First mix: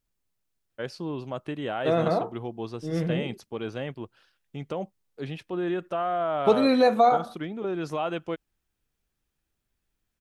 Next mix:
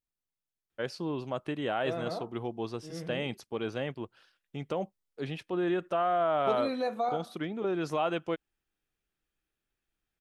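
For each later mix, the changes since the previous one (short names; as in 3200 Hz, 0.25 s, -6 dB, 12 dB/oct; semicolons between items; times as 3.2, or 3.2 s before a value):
second voice -11.5 dB; master: add low shelf 190 Hz -4 dB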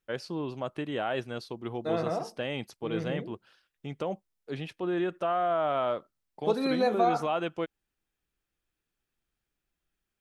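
first voice: entry -0.70 s; second voice +5.5 dB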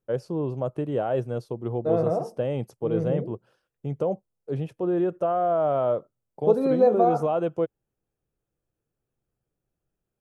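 second voice: add air absorption 54 m; master: add graphic EQ 125/500/2000/4000 Hz +11/+9/-8/-11 dB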